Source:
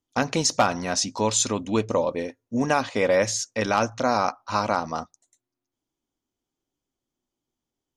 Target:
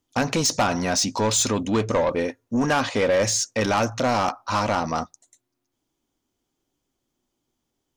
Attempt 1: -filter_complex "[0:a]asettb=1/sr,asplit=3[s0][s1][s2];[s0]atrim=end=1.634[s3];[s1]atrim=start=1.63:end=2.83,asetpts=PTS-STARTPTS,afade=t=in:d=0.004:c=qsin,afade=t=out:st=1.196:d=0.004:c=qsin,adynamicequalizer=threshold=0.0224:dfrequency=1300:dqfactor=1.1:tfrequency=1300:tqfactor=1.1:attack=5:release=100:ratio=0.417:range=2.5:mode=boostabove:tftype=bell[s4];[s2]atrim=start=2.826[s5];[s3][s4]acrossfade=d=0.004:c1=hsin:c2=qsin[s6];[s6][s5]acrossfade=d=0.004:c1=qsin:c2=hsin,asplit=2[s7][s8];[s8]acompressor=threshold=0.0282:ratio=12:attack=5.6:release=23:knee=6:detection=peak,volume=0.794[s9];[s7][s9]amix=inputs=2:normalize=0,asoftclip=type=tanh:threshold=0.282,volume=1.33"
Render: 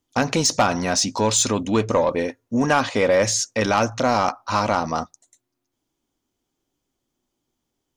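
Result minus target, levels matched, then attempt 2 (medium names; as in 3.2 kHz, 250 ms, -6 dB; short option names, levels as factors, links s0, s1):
saturation: distortion -7 dB
-filter_complex "[0:a]asettb=1/sr,asplit=3[s0][s1][s2];[s0]atrim=end=1.634[s3];[s1]atrim=start=1.63:end=2.83,asetpts=PTS-STARTPTS,afade=t=in:d=0.004:c=qsin,afade=t=out:st=1.196:d=0.004:c=qsin,adynamicequalizer=threshold=0.0224:dfrequency=1300:dqfactor=1.1:tfrequency=1300:tqfactor=1.1:attack=5:release=100:ratio=0.417:range=2.5:mode=boostabove:tftype=bell[s4];[s2]atrim=start=2.826[s5];[s3][s4]acrossfade=d=0.004:c1=hsin:c2=qsin[s6];[s6][s5]acrossfade=d=0.004:c1=qsin:c2=hsin,asplit=2[s7][s8];[s8]acompressor=threshold=0.0282:ratio=12:attack=5.6:release=23:knee=6:detection=peak,volume=0.794[s9];[s7][s9]amix=inputs=2:normalize=0,asoftclip=type=tanh:threshold=0.133,volume=1.33"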